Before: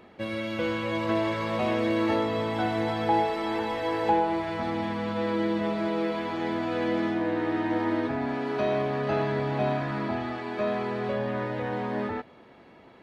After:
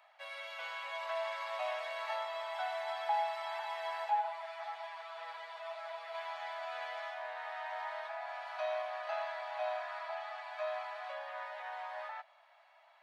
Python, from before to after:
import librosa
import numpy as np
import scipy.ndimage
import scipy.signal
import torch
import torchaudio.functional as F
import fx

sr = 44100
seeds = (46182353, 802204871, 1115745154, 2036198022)

y = scipy.signal.sosfilt(scipy.signal.butter(16, 600.0, 'highpass', fs=sr, output='sos'), x)
y = fx.ensemble(y, sr, at=(4.04, 6.13), fade=0.02)
y = y * librosa.db_to_amplitude(-7.5)